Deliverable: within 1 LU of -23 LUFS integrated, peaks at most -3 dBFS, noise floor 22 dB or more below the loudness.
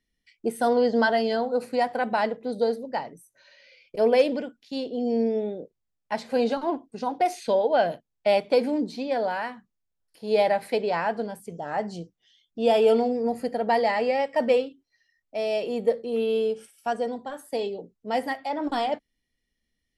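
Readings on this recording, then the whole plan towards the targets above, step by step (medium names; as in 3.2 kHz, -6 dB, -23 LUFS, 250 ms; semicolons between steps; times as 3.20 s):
loudness -26.0 LUFS; peak level -8.5 dBFS; loudness target -23.0 LUFS
-> trim +3 dB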